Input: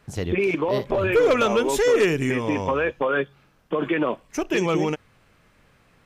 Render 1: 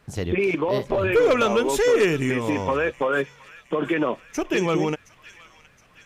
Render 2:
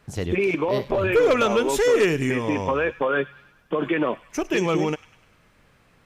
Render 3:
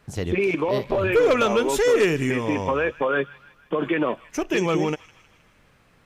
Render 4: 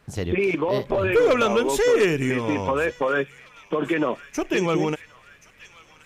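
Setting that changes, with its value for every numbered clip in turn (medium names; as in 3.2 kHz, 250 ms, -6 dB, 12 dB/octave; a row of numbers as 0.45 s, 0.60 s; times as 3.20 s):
feedback echo behind a high-pass, time: 718 ms, 100 ms, 157 ms, 1077 ms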